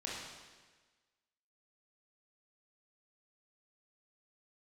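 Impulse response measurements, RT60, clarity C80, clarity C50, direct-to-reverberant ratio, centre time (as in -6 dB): 1.4 s, 2.0 dB, -1.0 dB, -5.5 dB, 89 ms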